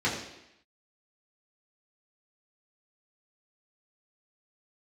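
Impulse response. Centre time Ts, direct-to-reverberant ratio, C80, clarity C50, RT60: 40 ms, −7.5 dB, 7.0 dB, 5.0 dB, 0.85 s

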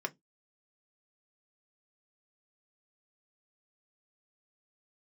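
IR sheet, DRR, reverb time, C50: 3.5 dB, 0.15 s, 28.5 dB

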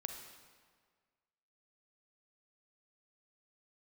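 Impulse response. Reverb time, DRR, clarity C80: 1.7 s, 4.5 dB, 7.0 dB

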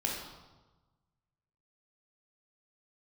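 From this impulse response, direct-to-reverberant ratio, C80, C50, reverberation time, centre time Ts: −3.0 dB, 4.5 dB, 1.5 dB, 1.2 s, 57 ms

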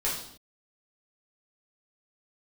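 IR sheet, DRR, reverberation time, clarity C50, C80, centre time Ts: −7.0 dB, non-exponential decay, 3.5 dB, 7.5 dB, 41 ms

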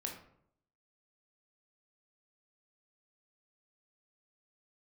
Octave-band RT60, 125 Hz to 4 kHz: 0.80, 0.80, 0.75, 0.65, 0.50, 0.35 seconds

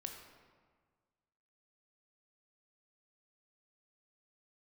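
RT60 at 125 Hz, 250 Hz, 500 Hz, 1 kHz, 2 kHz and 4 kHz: 1.9, 1.7, 1.6, 1.6, 1.3, 0.95 seconds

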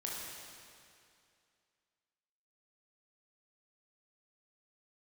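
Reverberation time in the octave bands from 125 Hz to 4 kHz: 2.4, 2.4, 2.4, 2.4, 2.4, 2.3 seconds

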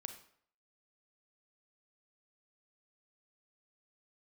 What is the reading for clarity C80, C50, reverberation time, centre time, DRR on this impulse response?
12.5 dB, 9.0 dB, 0.60 s, 13 ms, 7.0 dB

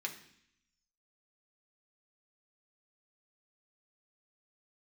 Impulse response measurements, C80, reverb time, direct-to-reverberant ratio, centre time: 13.5 dB, 0.65 s, 1.0 dB, 14 ms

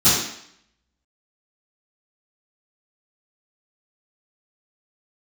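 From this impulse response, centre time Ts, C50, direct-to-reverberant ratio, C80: 64 ms, 0.5 dB, −17.0 dB, 4.5 dB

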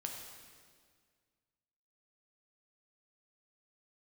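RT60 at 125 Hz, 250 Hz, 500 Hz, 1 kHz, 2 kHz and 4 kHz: 2.2, 2.1, 2.0, 1.8, 1.7, 1.7 seconds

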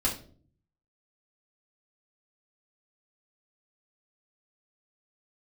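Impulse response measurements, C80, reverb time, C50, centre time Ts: 14.5 dB, 0.45 s, 9.0 dB, 21 ms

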